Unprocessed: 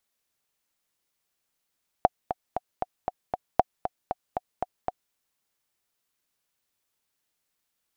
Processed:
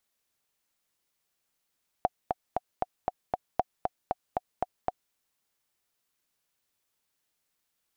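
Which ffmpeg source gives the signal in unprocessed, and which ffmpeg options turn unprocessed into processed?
-f lavfi -i "aevalsrc='pow(10,(-4-10*gte(mod(t,6*60/233),60/233))/20)*sin(2*PI*734*mod(t,60/233))*exp(-6.91*mod(t,60/233)/0.03)':d=3.09:s=44100"
-af "alimiter=limit=-11.5dB:level=0:latency=1:release=30"

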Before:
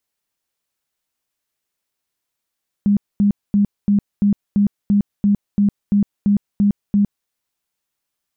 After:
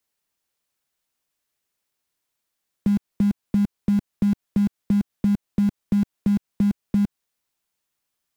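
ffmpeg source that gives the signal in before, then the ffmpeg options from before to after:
-f lavfi -i "aevalsrc='0.282*sin(2*PI*203*mod(t,0.34))*lt(mod(t,0.34),22/203)':d=4.42:s=44100"
-filter_complex "[0:a]acrossover=split=170|680[a][b][c];[a]acompressor=threshold=-30dB:ratio=4[d];[b]acompressor=threshold=-24dB:ratio=4[e];[c]acompressor=threshold=-52dB:ratio=4[f];[d][e][f]amix=inputs=3:normalize=0,asplit=2[g][h];[h]acrusher=bits=5:dc=4:mix=0:aa=0.000001,volume=-11.5dB[i];[g][i]amix=inputs=2:normalize=0"

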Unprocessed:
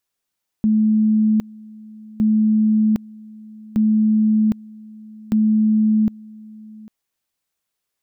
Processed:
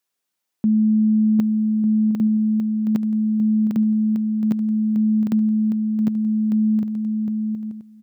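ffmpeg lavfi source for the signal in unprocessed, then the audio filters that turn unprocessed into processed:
-f lavfi -i "aevalsrc='pow(10,(-12.5-23.5*gte(mod(t,1.56),0.76))/20)*sin(2*PI*216*t)':d=6.24:s=44100"
-af "highpass=140,aecho=1:1:750|1200|1470|1632|1729:0.631|0.398|0.251|0.158|0.1"

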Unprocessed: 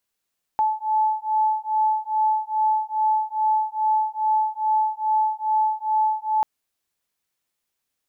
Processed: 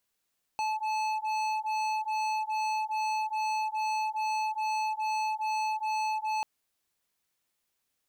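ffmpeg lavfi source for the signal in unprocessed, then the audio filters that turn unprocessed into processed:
-f lavfi -i "aevalsrc='0.0794*(sin(2*PI*865*t)+sin(2*PI*867.4*t))':d=5.84:s=44100"
-af "volume=29.5dB,asoftclip=hard,volume=-29.5dB"

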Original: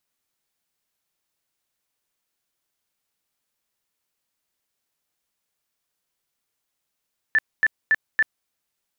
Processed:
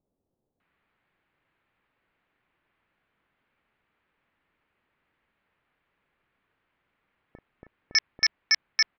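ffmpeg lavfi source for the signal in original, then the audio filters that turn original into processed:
-f lavfi -i "aevalsrc='0.2*sin(2*PI*1760*mod(t,0.28))*lt(mod(t,0.28),63/1760)':d=1.12:s=44100"
-filter_complex "[0:a]lowpass=f=2.4k:w=0.5412,lowpass=f=2.4k:w=1.3066,aresample=11025,aeval=exprs='0.2*sin(PI/2*2.82*val(0)/0.2)':c=same,aresample=44100,acrossover=split=650[a][b];[b]adelay=600[c];[a][c]amix=inputs=2:normalize=0"

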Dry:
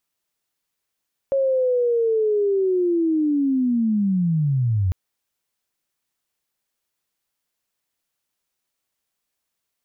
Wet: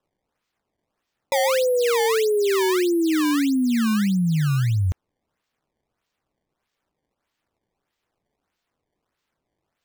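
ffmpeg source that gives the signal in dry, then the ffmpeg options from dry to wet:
-f lavfi -i "aevalsrc='pow(10,(-16.5-0.5*t/3.6)/20)*sin(2*PI*(550*t-463*t*t/(2*3.6)))':d=3.6:s=44100"
-af "acrusher=samples=19:mix=1:aa=0.000001:lfo=1:lforange=30.4:lforate=1.6"

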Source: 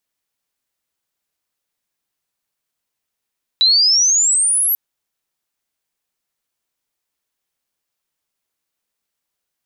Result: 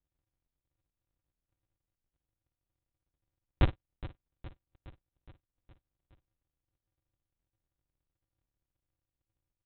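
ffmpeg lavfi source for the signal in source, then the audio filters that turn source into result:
-f lavfi -i "aevalsrc='pow(10,(-9-4.5*t/1.14)/20)*sin(2*PI*3900*1.14/log(12000/3900)*(exp(log(12000/3900)*t/1.14)-1))':d=1.14:s=44100"
-af "aresample=8000,acrusher=samples=37:mix=1:aa=0.000001,aresample=44100,aecho=1:1:416|832|1248|1664|2080|2496:0.15|0.0883|0.0521|0.0307|0.0181|0.0107"

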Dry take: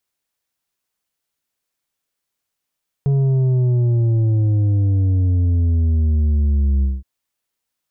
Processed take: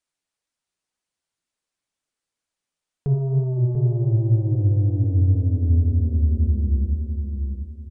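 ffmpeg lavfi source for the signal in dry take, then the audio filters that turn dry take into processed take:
-f lavfi -i "aevalsrc='0.2*clip((3.97-t)/0.2,0,1)*tanh(2.11*sin(2*PI*140*3.97/log(65/140)*(exp(log(65/140)*t/3.97)-1)))/tanh(2.11)':d=3.97:s=44100"
-filter_complex "[0:a]flanger=delay=3:depth=9:regen=37:speed=2:shape=sinusoidal,asplit=2[a][b];[b]adelay=691,lowpass=f=830:p=1,volume=-5dB,asplit=2[c][d];[d]adelay=691,lowpass=f=830:p=1,volume=0.32,asplit=2[e][f];[f]adelay=691,lowpass=f=830:p=1,volume=0.32,asplit=2[g][h];[h]adelay=691,lowpass=f=830:p=1,volume=0.32[i];[c][e][g][i]amix=inputs=4:normalize=0[j];[a][j]amix=inputs=2:normalize=0,aresample=22050,aresample=44100"

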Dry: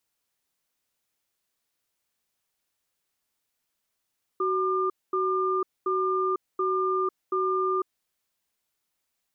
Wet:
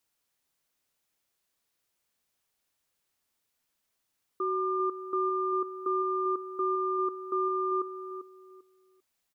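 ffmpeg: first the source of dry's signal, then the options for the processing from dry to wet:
-f lavfi -i "aevalsrc='0.0531*(sin(2*PI*375*t)+sin(2*PI*1200*t))*clip(min(mod(t,0.73),0.5-mod(t,0.73))/0.005,0,1)':d=3.59:s=44100"
-filter_complex "[0:a]alimiter=limit=-23.5dB:level=0:latency=1:release=248,asplit=2[a][b];[b]adelay=395,lowpass=f=1k:p=1,volume=-8.5dB,asplit=2[c][d];[d]adelay=395,lowpass=f=1k:p=1,volume=0.27,asplit=2[e][f];[f]adelay=395,lowpass=f=1k:p=1,volume=0.27[g];[c][e][g]amix=inputs=3:normalize=0[h];[a][h]amix=inputs=2:normalize=0"

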